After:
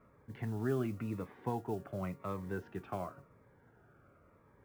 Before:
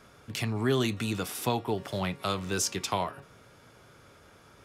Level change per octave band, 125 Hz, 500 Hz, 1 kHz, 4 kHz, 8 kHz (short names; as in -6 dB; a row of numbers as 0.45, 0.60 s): -6.5, -7.5, -10.0, -28.0, -28.5 dB